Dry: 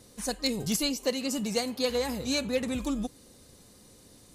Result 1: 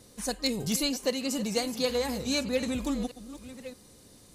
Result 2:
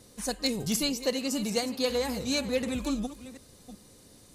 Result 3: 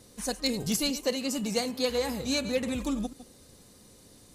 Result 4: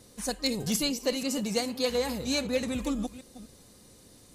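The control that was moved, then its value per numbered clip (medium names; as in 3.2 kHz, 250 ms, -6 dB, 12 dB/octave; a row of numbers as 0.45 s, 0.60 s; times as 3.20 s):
chunks repeated in reverse, time: 623 ms, 375 ms, 101 ms, 247 ms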